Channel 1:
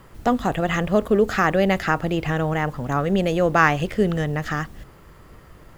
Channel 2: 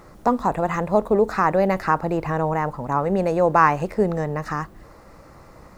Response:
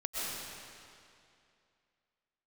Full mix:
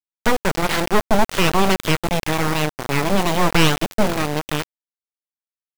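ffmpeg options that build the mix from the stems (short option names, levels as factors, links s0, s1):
-filter_complex "[0:a]aeval=exprs='abs(val(0))':c=same,volume=0.841[s0];[1:a]alimiter=limit=0.266:level=0:latency=1:release=197,volume=-1,adelay=27,volume=0.188[s1];[s0][s1]amix=inputs=2:normalize=0,acontrast=45,aeval=exprs='val(0)*gte(abs(val(0)),0.15)':c=same"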